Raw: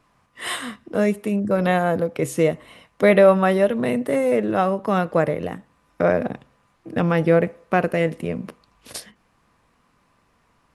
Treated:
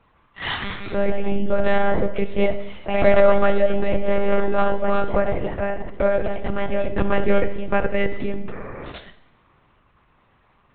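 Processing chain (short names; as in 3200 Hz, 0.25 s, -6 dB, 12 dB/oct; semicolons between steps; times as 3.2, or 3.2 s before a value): spectral repair 8.54–8.89, 230–2500 Hz before; echoes that change speed 0.237 s, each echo +2 st, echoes 2, each echo -6 dB; in parallel at 0 dB: compressor, threshold -26 dBFS, peak gain reduction 16.5 dB; on the sum: monotone LPC vocoder at 8 kHz 200 Hz; Schroeder reverb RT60 0.85 s, combs from 27 ms, DRR 11.5 dB; gain -3 dB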